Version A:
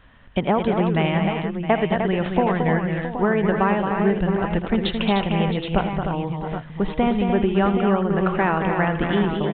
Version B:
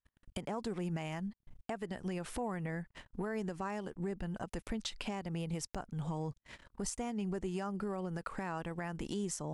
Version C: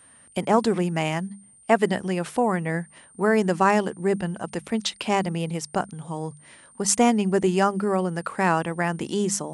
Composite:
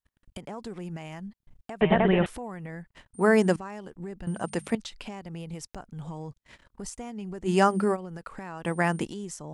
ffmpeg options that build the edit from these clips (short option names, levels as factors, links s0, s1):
-filter_complex "[2:a]asplit=4[s0][s1][s2][s3];[1:a]asplit=6[s4][s5][s6][s7][s8][s9];[s4]atrim=end=1.812[s10];[0:a]atrim=start=1.808:end=2.262[s11];[s5]atrim=start=2.258:end=3.142[s12];[s0]atrim=start=3.138:end=3.562[s13];[s6]atrim=start=3.558:end=4.272[s14];[s1]atrim=start=4.268:end=4.752[s15];[s7]atrim=start=4.748:end=7.51[s16];[s2]atrim=start=7.45:end=7.97[s17];[s8]atrim=start=7.91:end=8.652[s18];[s3]atrim=start=8.648:end=9.052[s19];[s9]atrim=start=9.048[s20];[s10][s11]acrossfade=d=0.004:c1=hsin:c2=hsin[s21];[s21][s12]acrossfade=d=0.004:c1=hsin:c2=hsin[s22];[s22][s13]acrossfade=d=0.004:c1=hsin:c2=hsin[s23];[s23][s14]acrossfade=d=0.004:c1=hsin:c2=hsin[s24];[s24][s15]acrossfade=d=0.004:c1=hsin:c2=hsin[s25];[s25][s16]acrossfade=d=0.004:c1=hsin:c2=hsin[s26];[s26][s17]acrossfade=d=0.06:c1=tri:c2=tri[s27];[s27][s18]acrossfade=d=0.06:c1=tri:c2=tri[s28];[s28][s19]acrossfade=d=0.004:c1=hsin:c2=hsin[s29];[s29][s20]acrossfade=d=0.004:c1=hsin:c2=hsin"